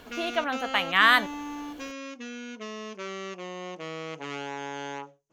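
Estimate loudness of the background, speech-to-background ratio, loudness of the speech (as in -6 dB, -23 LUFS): -37.0 LUFS, 14.0 dB, -23.0 LUFS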